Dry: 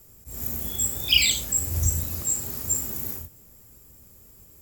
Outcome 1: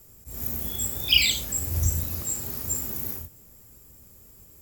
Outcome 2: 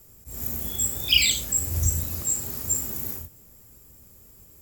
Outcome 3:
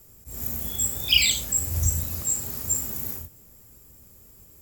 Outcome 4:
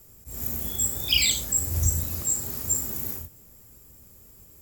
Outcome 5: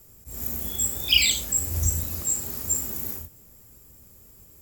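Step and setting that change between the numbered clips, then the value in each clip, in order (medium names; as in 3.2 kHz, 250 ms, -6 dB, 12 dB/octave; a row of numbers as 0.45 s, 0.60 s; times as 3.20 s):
dynamic bell, frequency: 7.8 kHz, 860 Hz, 340 Hz, 2.7 kHz, 120 Hz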